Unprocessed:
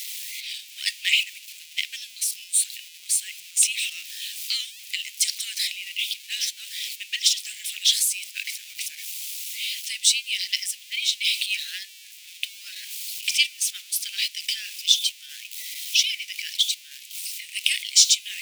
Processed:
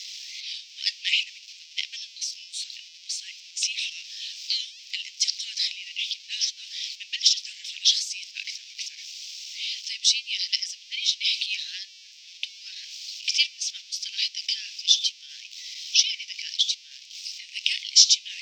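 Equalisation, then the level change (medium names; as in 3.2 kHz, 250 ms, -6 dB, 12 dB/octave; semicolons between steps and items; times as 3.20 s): elliptic band-pass 1.4–5.5 kHz, stop band 40 dB; tilt EQ +4.5 dB/octave; treble shelf 4.3 kHz +8 dB; -12.0 dB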